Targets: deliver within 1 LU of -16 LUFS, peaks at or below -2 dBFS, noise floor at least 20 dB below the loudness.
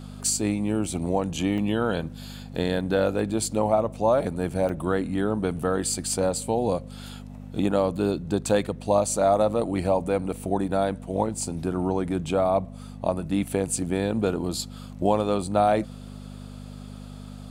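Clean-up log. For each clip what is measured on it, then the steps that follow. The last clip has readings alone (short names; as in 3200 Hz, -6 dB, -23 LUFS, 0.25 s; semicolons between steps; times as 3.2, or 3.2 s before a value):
dropouts 3; longest dropout 3.7 ms; hum 50 Hz; harmonics up to 250 Hz; hum level -37 dBFS; loudness -25.5 LUFS; peak -7.5 dBFS; loudness target -16.0 LUFS
-> interpolate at 0.99/1.58/4.69, 3.7 ms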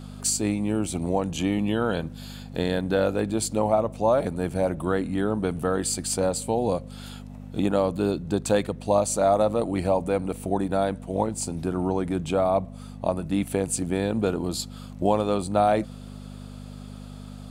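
dropouts 0; hum 50 Hz; harmonics up to 250 Hz; hum level -37 dBFS
-> de-hum 50 Hz, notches 5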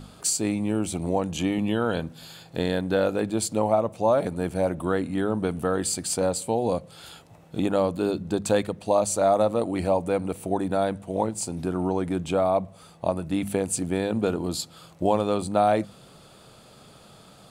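hum none; loudness -25.5 LUFS; peak -8.0 dBFS; loudness target -16.0 LUFS
-> gain +9.5 dB; limiter -2 dBFS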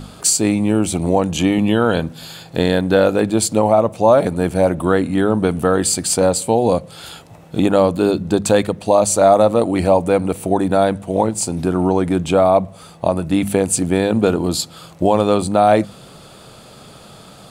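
loudness -16.5 LUFS; peak -2.0 dBFS; noise floor -42 dBFS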